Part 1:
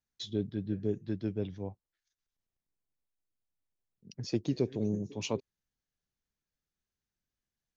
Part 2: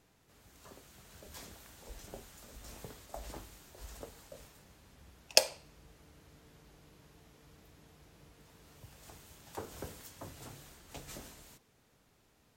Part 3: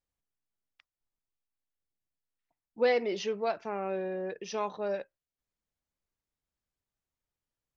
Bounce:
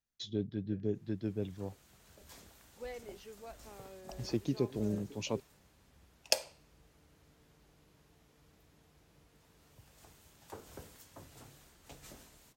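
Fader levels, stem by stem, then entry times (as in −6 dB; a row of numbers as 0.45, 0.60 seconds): −2.5, −5.5, −19.0 decibels; 0.00, 0.95, 0.00 seconds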